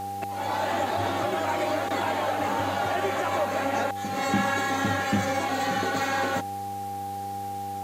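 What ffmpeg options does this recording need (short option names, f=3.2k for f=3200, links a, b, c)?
-af "adeclick=t=4,bandreject=f=98.6:t=h:w=4,bandreject=f=197.2:t=h:w=4,bandreject=f=295.8:t=h:w=4,bandreject=f=394.4:t=h:w=4,bandreject=f=493:t=h:w=4,bandreject=f=800:w=30,afwtdn=0.0035"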